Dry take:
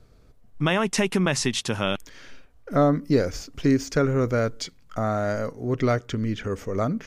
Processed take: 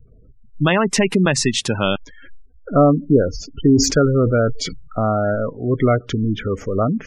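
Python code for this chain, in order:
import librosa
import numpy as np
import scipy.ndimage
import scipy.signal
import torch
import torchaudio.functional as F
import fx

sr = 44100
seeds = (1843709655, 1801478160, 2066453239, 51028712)

y = fx.spec_gate(x, sr, threshold_db=-20, keep='strong')
y = fx.sustainer(y, sr, db_per_s=65.0, at=(3.59, 5.35))
y = y * librosa.db_to_amplitude(6.5)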